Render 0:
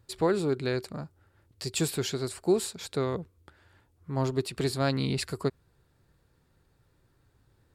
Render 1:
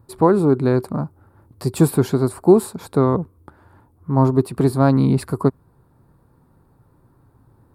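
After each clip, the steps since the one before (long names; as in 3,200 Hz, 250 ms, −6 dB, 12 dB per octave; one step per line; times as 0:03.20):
octave-band graphic EQ 125/250/1,000/2,000/4,000 Hz +5/+8/+10/−10/+3 dB
speech leveller 2 s
flat-topped bell 4,600 Hz −12.5 dB
level +6.5 dB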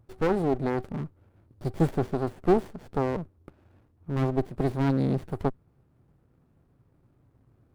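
windowed peak hold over 33 samples
level −7.5 dB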